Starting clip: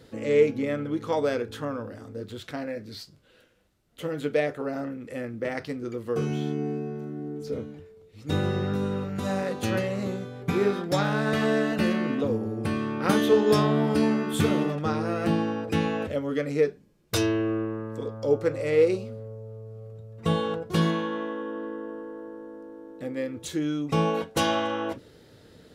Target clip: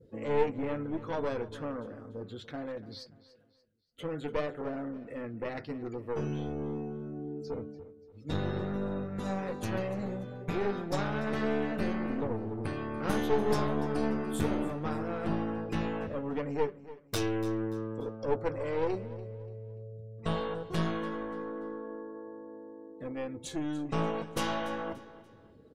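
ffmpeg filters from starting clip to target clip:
ffmpeg -i in.wav -af "flanger=delay=1.9:depth=4.5:regen=-82:speed=0.15:shape=sinusoidal,adynamicequalizer=threshold=0.00224:dfrequency=3200:dqfactor=0.97:tfrequency=3200:tqfactor=0.97:attack=5:release=100:ratio=0.375:range=3:mode=cutabove:tftype=bell,aeval=exprs='clip(val(0),-1,0.0178)':channel_layout=same,afftdn=noise_reduction=19:noise_floor=-55,aecho=1:1:290|580|870:0.141|0.0509|0.0183" out.wav

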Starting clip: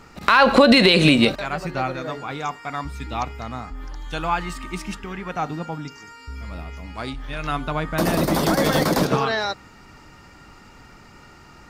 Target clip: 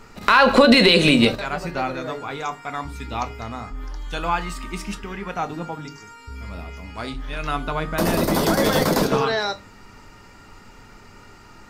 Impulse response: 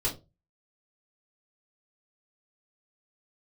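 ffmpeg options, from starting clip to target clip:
-filter_complex "[0:a]asplit=2[link_01][link_02];[1:a]atrim=start_sample=2205,highshelf=frequency=5900:gain=9.5[link_03];[link_02][link_03]afir=irnorm=-1:irlink=0,volume=-15.5dB[link_04];[link_01][link_04]amix=inputs=2:normalize=0,volume=-1dB"

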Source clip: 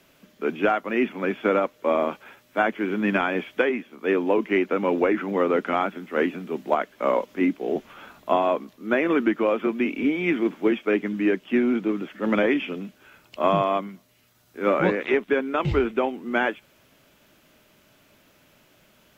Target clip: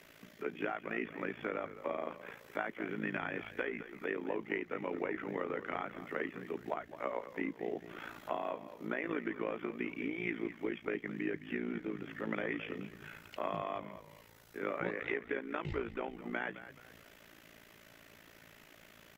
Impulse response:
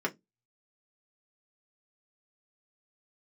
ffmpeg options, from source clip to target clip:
-filter_complex "[0:a]equalizer=frequency=1900:width_type=o:width=0.41:gain=7.5,acompressor=threshold=-41dB:ratio=2.5,asplit=5[link_01][link_02][link_03][link_04][link_05];[link_02]adelay=213,afreqshift=-52,volume=-13dB[link_06];[link_03]adelay=426,afreqshift=-104,volume=-21dB[link_07];[link_04]adelay=639,afreqshift=-156,volume=-28.9dB[link_08];[link_05]adelay=852,afreqshift=-208,volume=-36.9dB[link_09];[link_01][link_06][link_07][link_08][link_09]amix=inputs=5:normalize=0,tremolo=f=56:d=0.824,asplit=2[link_10][link_11];[1:a]atrim=start_sample=2205[link_12];[link_11][link_12]afir=irnorm=-1:irlink=0,volume=-25.5dB[link_13];[link_10][link_13]amix=inputs=2:normalize=0,volume=1.5dB"

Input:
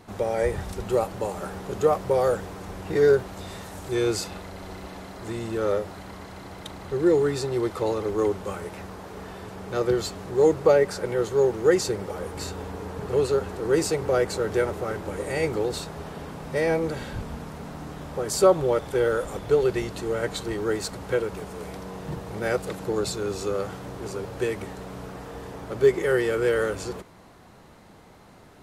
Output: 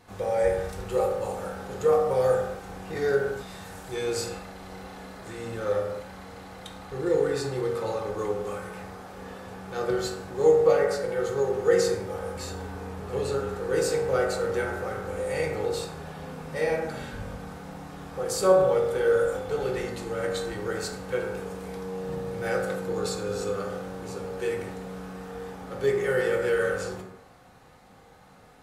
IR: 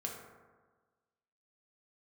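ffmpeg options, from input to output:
-filter_complex "[0:a]equalizer=frequency=220:width=0.41:gain=-5.5[link_01];[1:a]atrim=start_sample=2205,afade=type=out:start_time=0.33:duration=0.01,atrim=end_sample=14994,asetrate=48510,aresample=44100[link_02];[link_01][link_02]afir=irnorm=-1:irlink=0"

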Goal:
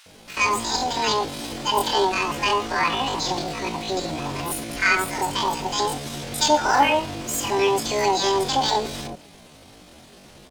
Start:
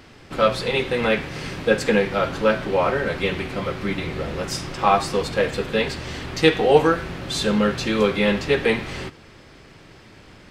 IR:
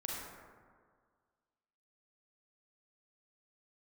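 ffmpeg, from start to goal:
-filter_complex "[0:a]acrossover=split=600[link_01][link_02];[link_01]adelay=80[link_03];[link_03][link_02]amix=inputs=2:normalize=0,asetrate=83250,aresample=44100,atempo=0.529732"

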